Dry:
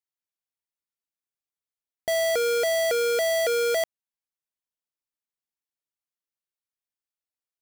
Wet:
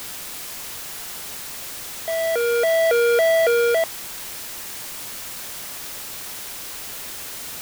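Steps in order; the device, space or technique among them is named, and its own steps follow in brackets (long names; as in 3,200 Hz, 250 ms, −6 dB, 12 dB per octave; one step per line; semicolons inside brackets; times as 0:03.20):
shortwave radio (band-pass filter 310–2,500 Hz; amplitude tremolo 0.31 Hz, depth 72%; white noise bed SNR 9 dB)
level +7.5 dB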